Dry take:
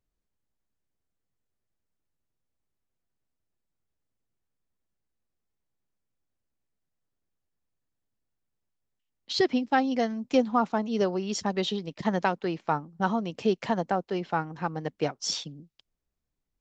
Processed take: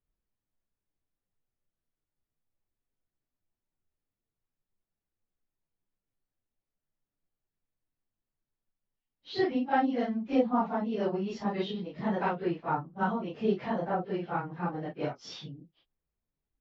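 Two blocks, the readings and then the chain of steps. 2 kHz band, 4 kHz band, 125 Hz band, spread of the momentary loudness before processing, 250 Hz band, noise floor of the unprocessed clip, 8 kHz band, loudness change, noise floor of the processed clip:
-4.5 dB, -10.0 dB, -2.5 dB, 7 LU, -2.5 dB, -83 dBFS, n/a, -3.0 dB, under -85 dBFS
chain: phase scrambler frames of 0.1 s; air absorption 280 m; gain -2 dB

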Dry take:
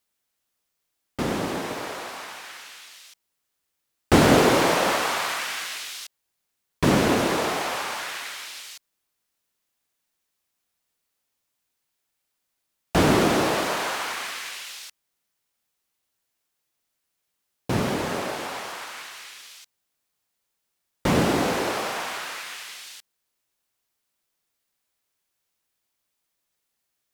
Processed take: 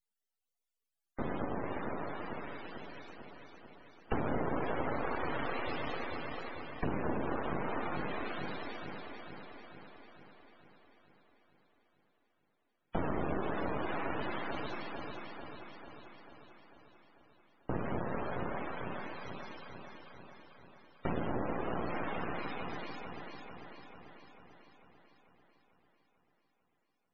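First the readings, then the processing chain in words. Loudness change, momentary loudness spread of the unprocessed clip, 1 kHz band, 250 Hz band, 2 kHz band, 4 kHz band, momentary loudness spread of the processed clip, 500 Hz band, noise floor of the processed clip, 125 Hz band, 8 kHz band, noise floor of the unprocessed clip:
-15.0 dB, 20 LU, -11.5 dB, -13.0 dB, -13.5 dB, -20.5 dB, 19 LU, -12.5 dB, -81 dBFS, -12.5 dB, under -40 dB, -79 dBFS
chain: on a send: echo with dull and thin repeats by turns 0.222 s, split 960 Hz, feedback 78%, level -3 dB; on the sum: half-wave rectifier; loudest bins only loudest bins 64; compressor 4:1, threshold -26 dBFS, peak gain reduction 11 dB; gain -4 dB

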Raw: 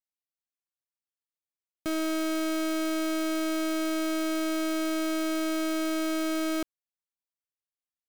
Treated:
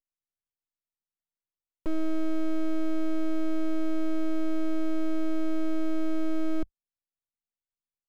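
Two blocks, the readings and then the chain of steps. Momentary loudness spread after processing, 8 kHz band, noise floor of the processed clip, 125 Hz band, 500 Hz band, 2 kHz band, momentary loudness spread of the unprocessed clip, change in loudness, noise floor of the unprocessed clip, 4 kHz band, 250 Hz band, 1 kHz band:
2 LU, under -15 dB, under -85 dBFS, n/a, -3.5 dB, -11.0 dB, 2 LU, -2.5 dB, under -85 dBFS, -15.0 dB, -1.0 dB, -8.5 dB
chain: tilt -4 dB/oct; full-wave rectifier; gain -7.5 dB

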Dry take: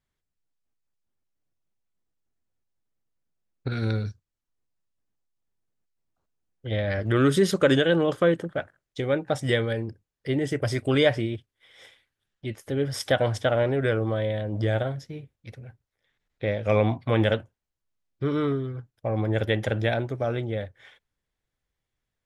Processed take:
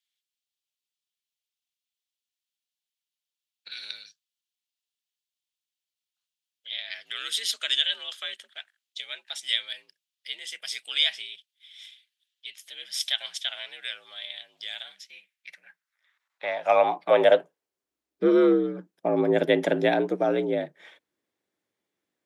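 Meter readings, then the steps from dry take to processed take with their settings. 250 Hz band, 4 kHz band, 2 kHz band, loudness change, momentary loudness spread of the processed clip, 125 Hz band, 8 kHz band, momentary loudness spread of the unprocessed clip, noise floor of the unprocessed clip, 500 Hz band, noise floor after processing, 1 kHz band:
-3.0 dB, +7.5 dB, -2.5 dB, -0.5 dB, 19 LU, -17.0 dB, +2.5 dB, 16 LU, -85 dBFS, -1.0 dB, under -85 dBFS, +2.5 dB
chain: frequency shift +58 Hz; high-pass sweep 3200 Hz -> 320 Hz, 14.86–17.93; gain +1 dB

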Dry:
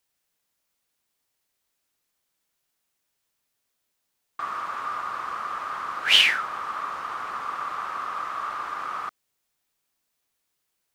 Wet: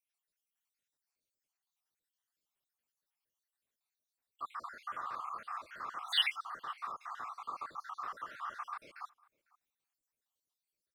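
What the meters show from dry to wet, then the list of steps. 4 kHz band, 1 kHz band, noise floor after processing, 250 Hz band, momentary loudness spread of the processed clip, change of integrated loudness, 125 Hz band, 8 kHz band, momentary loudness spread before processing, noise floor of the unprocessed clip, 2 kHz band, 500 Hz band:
-13.0 dB, -12.0 dB, under -85 dBFS, -15.0 dB, 14 LU, -13.5 dB, n/a, -18.0 dB, 15 LU, -78 dBFS, -16.0 dB, -14.5 dB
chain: random spectral dropouts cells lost 64%; outdoor echo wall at 86 m, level -25 dB; gain -9 dB

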